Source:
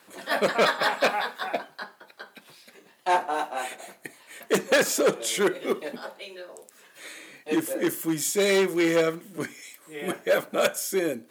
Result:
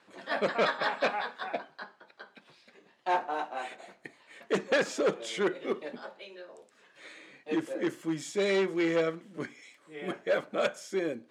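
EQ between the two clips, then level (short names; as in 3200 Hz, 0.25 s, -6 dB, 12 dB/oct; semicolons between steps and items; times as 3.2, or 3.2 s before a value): air absorption 110 m; -5.0 dB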